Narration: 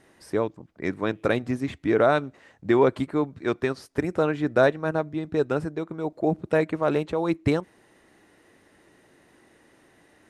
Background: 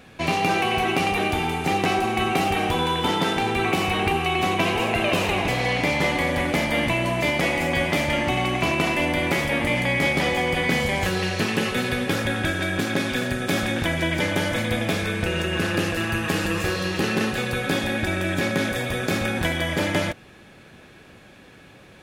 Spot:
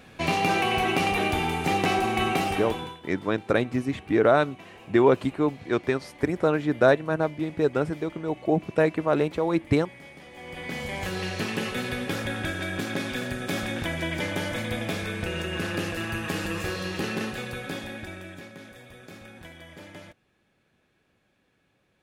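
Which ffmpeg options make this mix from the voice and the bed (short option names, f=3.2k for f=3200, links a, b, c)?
-filter_complex "[0:a]adelay=2250,volume=0.5dB[a];[1:a]volume=17.5dB,afade=t=out:st=2.27:d=0.73:silence=0.0668344,afade=t=in:st=10.31:d=0.95:silence=0.105925,afade=t=out:st=16.98:d=1.52:silence=0.16788[b];[a][b]amix=inputs=2:normalize=0"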